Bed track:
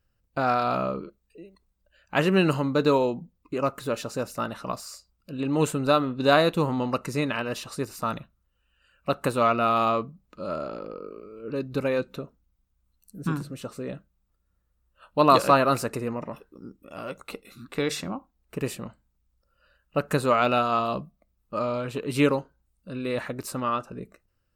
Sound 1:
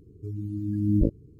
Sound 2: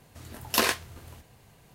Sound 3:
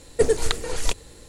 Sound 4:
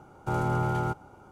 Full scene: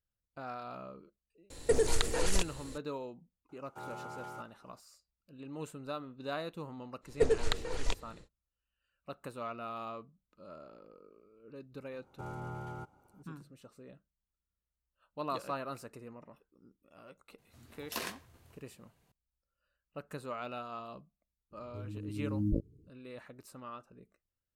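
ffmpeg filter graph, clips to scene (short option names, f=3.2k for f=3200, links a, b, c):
-filter_complex "[3:a]asplit=2[a][b];[4:a]asplit=2[c][d];[0:a]volume=-19dB[e];[a]acompressor=threshold=-19dB:ratio=6:attack=3.2:release=140:knee=1:detection=peak[f];[c]highpass=f=590:p=1[g];[b]adynamicsmooth=sensitivity=0.5:basefreq=5.5k[h];[2:a]asplit=2[i][j];[j]adelay=88,lowpass=f=2k:p=1,volume=-17dB,asplit=2[k][l];[l]adelay=88,lowpass=f=2k:p=1,volume=0.34,asplit=2[m][n];[n]adelay=88,lowpass=f=2k:p=1,volume=0.34[o];[i][k][m][o]amix=inputs=4:normalize=0[p];[f]atrim=end=1.28,asetpts=PTS-STARTPTS,volume=-2dB,afade=t=in:d=0.004:c=hsin,afade=t=out:st=1.276:d=0.004:c=hsin,adelay=1500[q];[g]atrim=end=1.31,asetpts=PTS-STARTPTS,volume=-12.5dB,afade=t=in:d=0.004:c=hsin,afade=t=out:st=1.306:d=0.004:c=hsin,adelay=153909S[r];[h]atrim=end=1.28,asetpts=PTS-STARTPTS,volume=-8dB,afade=t=in:d=0.1,afade=t=out:st=1.18:d=0.1,adelay=7010[s];[d]atrim=end=1.31,asetpts=PTS-STARTPTS,volume=-15dB,afade=t=in:d=0.004:c=hsin,afade=t=out:st=1.306:d=0.004:c=hsin,adelay=11920[t];[p]atrim=end=1.74,asetpts=PTS-STARTPTS,volume=-15dB,afade=t=in:d=0.004:c=hsin,afade=t=out:st=1.736:d=0.004:c=hsin,adelay=17380[u];[1:a]atrim=end=1.39,asetpts=PTS-STARTPTS,volume=-9.5dB,afade=t=in:d=0.004:c=hsin,afade=t=out:st=1.386:d=0.004:c=hsin,adelay=21510[v];[e][q][r][s][t][u][v]amix=inputs=7:normalize=0"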